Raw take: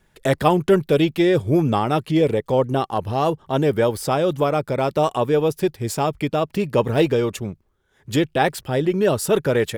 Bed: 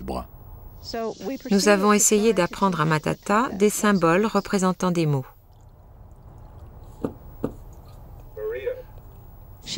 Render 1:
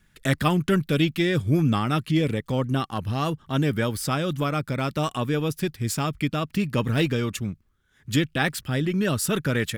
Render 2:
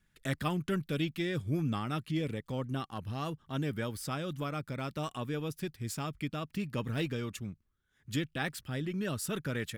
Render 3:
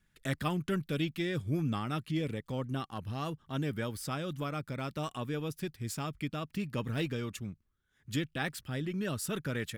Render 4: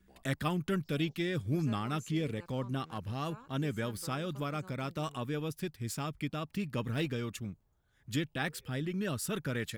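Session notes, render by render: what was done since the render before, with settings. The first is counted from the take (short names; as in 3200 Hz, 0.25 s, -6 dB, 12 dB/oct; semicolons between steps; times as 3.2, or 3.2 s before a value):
band shelf 590 Hz -10.5 dB
gain -11 dB
nothing audible
add bed -33 dB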